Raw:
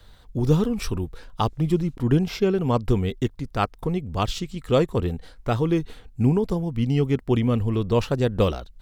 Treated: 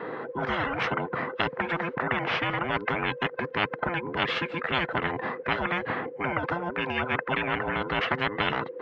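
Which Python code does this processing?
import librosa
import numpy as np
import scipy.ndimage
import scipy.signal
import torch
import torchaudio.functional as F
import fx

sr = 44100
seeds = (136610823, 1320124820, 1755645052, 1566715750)

y = fx.band_invert(x, sr, width_hz=500)
y = scipy.signal.sosfilt(scipy.signal.ellip(3, 1.0, 80, [140.0, 1800.0], 'bandpass', fs=sr, output='sos'), y)
y = fx.spectral_comp(y, sr, ratio=10.0)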